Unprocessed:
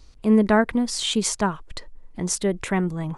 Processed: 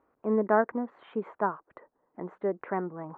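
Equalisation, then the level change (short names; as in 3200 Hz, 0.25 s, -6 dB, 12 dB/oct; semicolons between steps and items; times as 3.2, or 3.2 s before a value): HPF 370 Hz 12 dB/oct; inverse Chebyshev low-pass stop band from 4800 Hz, stop band 60 dB; -2.5 dB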